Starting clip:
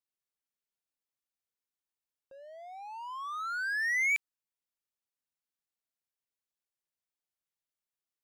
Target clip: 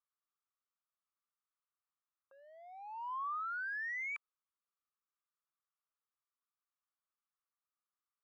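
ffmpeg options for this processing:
ffmpeg -i in.wav -af "bandpass=frequency=1200:width_type=q:width=6.4:csg=0,acompressor=threshold=-48dB:ratio=6,volume=9.5dB" out.wav

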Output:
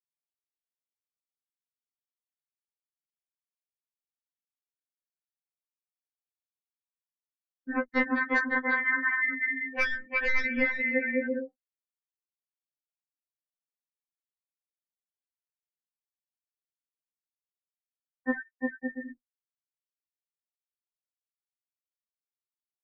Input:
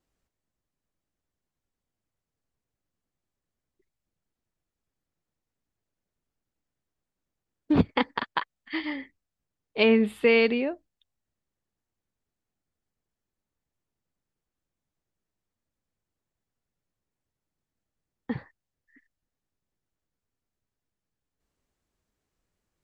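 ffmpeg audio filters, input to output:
ffmpeg -i in.wav -filter_complex "[0:a]equalizer=frequency=400:width_type=o:width=0.67:gain=-4,equalizer=frequency=1600:width_type=o:width=0.67:gain=8,equalizer=frequency=4000:width_type=o:width=0.67:gain=-6,asplit=2[link_01][link_02];[link_02]aecho=0:1:350|560|686|761.6|807:0.631|0.398|0.251|0.158|0.1[link_03];[link_01][link_03]amix=inputs=2:normalize=0,aeval=exprs='0.133*(abs(mod(val(0)/0.133+3,4)-2)-1)':channel_layout=same,afftfilt=real='re*gte(hypot(re,im),0.0251)':imag='im*gte(hypot(re,im),0.0251)':win_size=1024:overlap=0.75,highshelf=frequency=2400:width_type=q:width=3:gain=-7.5,acompressor=threshold=-30dB:ratio=5,aecho=1:1:5.7:0.45,afftfilt=real='re*3.46*eq(mod(b,12),0)':imag='im*3.46*eq(mod(b,12),0)':win_size=2048:overlap=0.75,volume=8.5dB" out.wav

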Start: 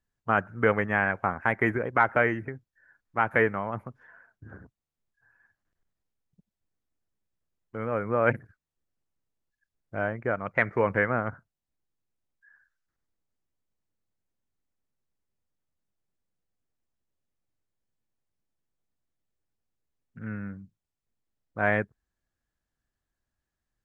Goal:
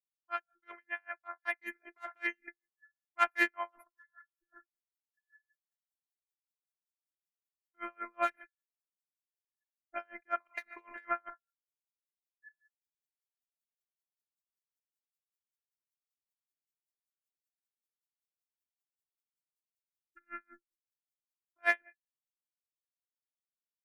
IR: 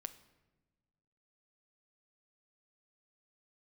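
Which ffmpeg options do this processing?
-filter_complex "[0:a]asplit=2[link_01][link_02];[link_02]aeval=exprs='clip(val(0),-1,0.106)':channel_layout=same,volume=-4.5dB[link_03];[link_01][link_03]amix=inputs=2:normalize=0,aderivative,asplit=2[link_04][link_05];[1:a]atrim=start_sample=2205,atrim=end_sample=6615,asetrate=39690,aresample=44100[link_06];[link_05][link_06]afir=irnorm=-1:irlink=0,volume=0dB[link_07];[link_04][link_07]amix=inputs=2:normalize=0,dynaudnorm=framelen=230:gausssize=21:maxgain=15dB,bandreject=frequency=390:width=12,afftfilt=real='hypot(re,im)*cos(PI*b)':imag='0':win_size=512:overlap=0.75,afftdn=noise_reduction=21:noise_floor=-49,aeval=exprs='val(0)*pow(10,-40*(0.5-0.5*cos(2*PI*5.2*n/s))/20)':channel_layout=same"

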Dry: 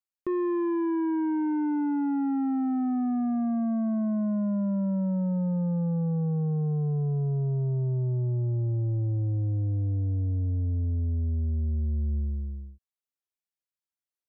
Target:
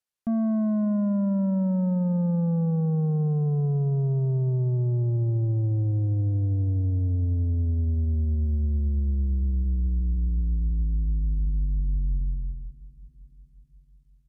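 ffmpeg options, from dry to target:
ffmpeg -i in.wav -af "aecho=1:1:552|1104|1656|2208:0.0944|0.051|0.0275|0.0149,asetrate=27781,aresample=44100,atempo=1.5874,volume=3dB" out.wav

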